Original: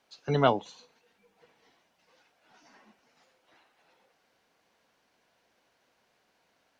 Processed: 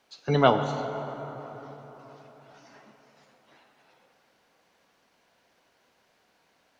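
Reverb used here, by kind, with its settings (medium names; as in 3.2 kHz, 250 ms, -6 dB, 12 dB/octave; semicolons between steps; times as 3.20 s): plate-style reverb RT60 4.3 s, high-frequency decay 0.5×, DRR 7 dB; trim +3.5 dB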